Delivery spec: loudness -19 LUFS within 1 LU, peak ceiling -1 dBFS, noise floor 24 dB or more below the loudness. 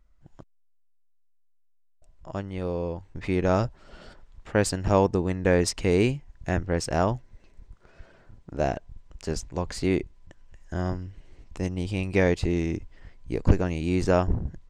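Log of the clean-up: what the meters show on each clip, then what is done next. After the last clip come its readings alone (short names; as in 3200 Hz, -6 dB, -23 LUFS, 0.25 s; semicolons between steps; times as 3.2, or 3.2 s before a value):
loudness -27.0 LUFS; peak -6.5 dBFS; loudness target -19.0 LUFS
-> gain +8 dB; limiter -1 dBFS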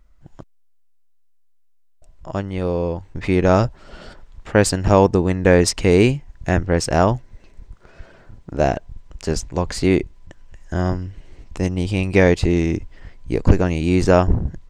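loudness -19.0 LUFS; peak -1.0 dBFS; noise floor -53 dBFS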